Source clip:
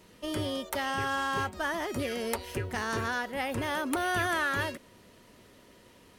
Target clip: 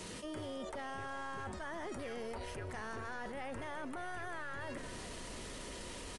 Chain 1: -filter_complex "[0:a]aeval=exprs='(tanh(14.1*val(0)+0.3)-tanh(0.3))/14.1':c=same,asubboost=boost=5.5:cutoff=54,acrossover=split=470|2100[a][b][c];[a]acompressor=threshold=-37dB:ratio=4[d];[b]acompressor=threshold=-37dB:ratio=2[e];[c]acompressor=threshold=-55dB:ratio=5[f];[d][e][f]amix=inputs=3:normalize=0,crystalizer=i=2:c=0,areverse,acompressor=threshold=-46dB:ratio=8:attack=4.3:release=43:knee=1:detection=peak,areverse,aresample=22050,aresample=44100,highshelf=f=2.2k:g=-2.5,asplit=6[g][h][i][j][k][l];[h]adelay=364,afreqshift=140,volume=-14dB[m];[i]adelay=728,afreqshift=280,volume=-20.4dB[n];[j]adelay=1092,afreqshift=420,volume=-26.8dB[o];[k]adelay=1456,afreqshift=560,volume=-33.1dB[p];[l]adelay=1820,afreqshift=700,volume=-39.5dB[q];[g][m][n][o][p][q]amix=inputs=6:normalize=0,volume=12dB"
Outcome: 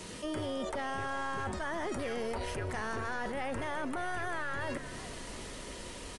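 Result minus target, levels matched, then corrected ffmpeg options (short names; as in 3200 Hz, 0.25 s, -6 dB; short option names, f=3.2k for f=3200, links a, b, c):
compressor: peak gain reduction -7 dB
-filter_complex "[0:a]aeval=exprs='(tanh(14.1*val(0)+0.3)-tanh(0.3))/14.1':c=same,asubboost=boost=5.5:cutoff=54,acrossover=split=470|2100[a][b][c];[a]acompressor=threshold=-37dB:ratio=4[d];[b]acompressor=threshold=-37dB:ratio=2[e];[c]acompressor=threshold=-55dB:ratio=5[f];[d][e][f]amix=inputs=3:normalize=0,crystalizer=i=2:c=0,areverse,acompressor=threshold=-54dB:ratio=8:attack=4.3:release=43:knee=1:detection=peak,areverse,aresample=22050,aresample=44100,highshelf=f=2.2k:g=-2.5,asplit=6[g][h][i][j][k][l];[h]adelay=364,afreqshift=140,volume=-14dB[m];[i]adelay=728,afreqshift=280,volume=-20.4dB[n];[j]adelay=1092,afreqshift=420,volume=-26.8dB[o];[k]adelay=1456,afreqshift=560,volume=-33.1dB[p];[l]adelay=1820,afreqshift=700,volume=-39.5dB[q];[g][m][n][o][p][q]amix=inputs=6:normalize=0,volume=12dB"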